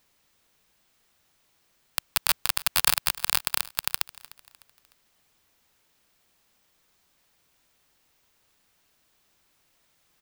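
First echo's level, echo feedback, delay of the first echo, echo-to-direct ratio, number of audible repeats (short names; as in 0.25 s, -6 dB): -20.0 dB, 40%, 0.302 s, -19.5 dB, 2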